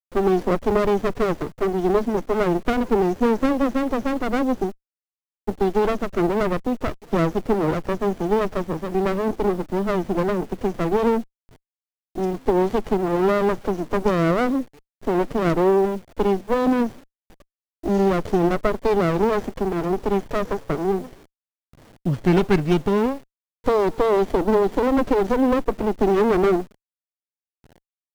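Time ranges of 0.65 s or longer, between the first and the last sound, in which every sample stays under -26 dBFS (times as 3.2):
4.71–5.48
11.21–12.18
16.88–17.86
21.02–22.06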